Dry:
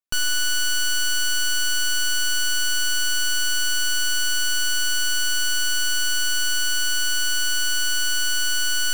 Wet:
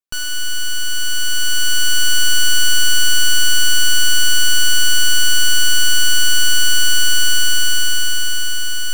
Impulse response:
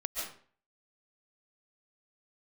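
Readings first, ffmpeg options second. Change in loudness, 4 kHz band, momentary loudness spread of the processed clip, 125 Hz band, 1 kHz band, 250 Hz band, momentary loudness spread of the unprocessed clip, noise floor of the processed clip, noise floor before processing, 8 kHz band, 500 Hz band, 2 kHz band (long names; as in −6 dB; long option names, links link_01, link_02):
+6.0 dB, +7.0 dB, 7 LU, can't be measured, +4.5 dB, +7.0 dB, 0 LU, −16 dBFS, −20 dBFS, +5.5 dB, +5.5 dB, +4.5 dB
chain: -filter_complex "[0:a]dynaudnorm=framelen=430:gausssize=7:maxgain=8.5dB,asplit=2[link_01][link_02];[1:a]atrim=start_sample=2205,asetrate=52920,aresample=44100[link_03];[link_02][link_03]afir=irnorm=-1:irlink=0,volume=-12.5dB[link_04];[link_01][link_04]amix=inputs=2:normalize=0,volume=-2.5dB"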